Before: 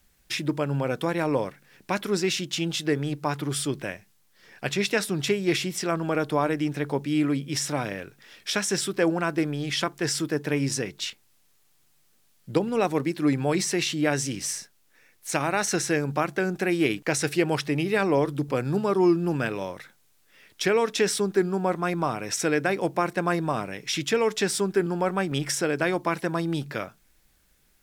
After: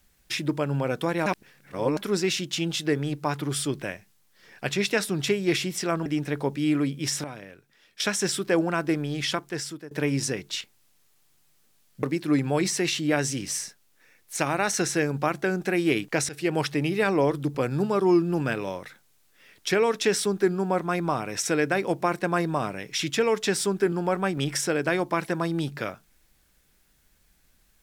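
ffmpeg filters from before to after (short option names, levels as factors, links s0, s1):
-filter_complex "[0:a]asplit=9[s0][s1][s2][s3][s4][s5][s6][s7][s8];[s0]atrim=end=1.262[s9];[s1]atrim=start=1.258:end=1.972,asetpts=PTS-STARTPTS,areverse[s10];[s2]atrim=start=1.968:end=6.062[s11];[s3]atrim=start=6.548:end=7.732[s12];[s4]atrim=start=7.728:end=8.492,asetpts=PTS-STARTPTS,volume=0.299[s13];[s5]atrim=start=8.488:end=10.4,asetpts=PTS-STARTPTS,afade=t=out:st=1.242:d=0.67:silence=0.105925[s14];[s6]atrim=start=10.4:end=12.522,asetpts=PTS-STARTPTS,afade=t=in:d=0.004:c=hsin:silence=0.105925[s15];[s7]atrim=start=12.968:end=17.23,asetpts=PTS-STARTPTS,afade=t=out:st=4.258:d=0.004:c=hsin:silence=0.141254[s16];[s8]atrim=start=17.23,asetpts=PTS-STARTPTS,afade=t=in:d=0.27:silence=0.141254[s17];[s9][s10]acrossfade=d=0.004:c1=hsin:c2=hsin[s18];[s18][s11]acrossfade=d=0.004:c1=hsin:c2=hsin[s19];[s19][s12]acrossfade=d=0.004:c1=hsin:c2=hsin[s20];[s20][s13]acrossfade=d=0.004:c1=hsin:c2=hsin[s21];[s14][s15]concat=n=2:v=0:a=1[s22];[s21][s22]acrossfade=d=0.004:c1=hsin:c2=hsin[s23];[s16][s17]concat=n=2:v=0:a=1[s24];[s23][s24]acrossfade=d=0.004:c1=hsin:c2=hsin"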